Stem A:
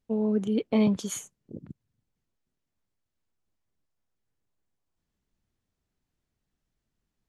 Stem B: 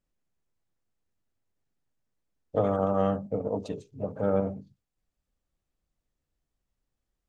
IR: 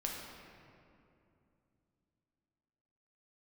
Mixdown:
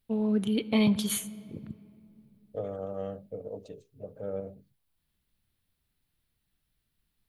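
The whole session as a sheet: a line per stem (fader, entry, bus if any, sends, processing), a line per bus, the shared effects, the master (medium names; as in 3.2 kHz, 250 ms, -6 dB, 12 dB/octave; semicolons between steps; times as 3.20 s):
+1.5 dB, 0.00 s, send -14.5 dB, FFT filter 110 Hz 0 dB, 490 Hz -7 dB, 4 kHz +6 dB, 6.7 kHz -7 dB, 10 kHz +9 dB
-10.5 dB, 0.00 s, no send, graphic EQ 250/500/1000 Hz -5/+6/-11 dB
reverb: on, RT60 2.7 s, pre-delay 7 ms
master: none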